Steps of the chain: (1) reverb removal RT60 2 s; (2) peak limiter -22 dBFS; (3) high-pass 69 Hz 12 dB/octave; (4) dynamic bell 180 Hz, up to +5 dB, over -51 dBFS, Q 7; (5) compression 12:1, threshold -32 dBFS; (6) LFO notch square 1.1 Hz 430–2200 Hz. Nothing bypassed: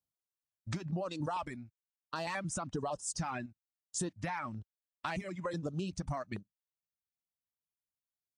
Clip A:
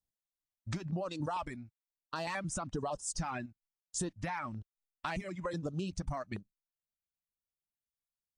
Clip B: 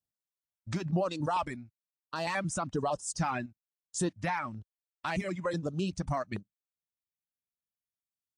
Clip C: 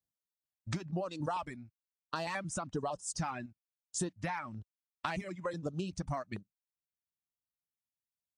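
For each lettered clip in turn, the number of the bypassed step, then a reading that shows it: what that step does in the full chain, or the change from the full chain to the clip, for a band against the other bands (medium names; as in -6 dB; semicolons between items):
3, momentary loudness spread change +1 LU; 5, mean gain reduction 4.0 dB; 2, mean gain reduction 2.5 dB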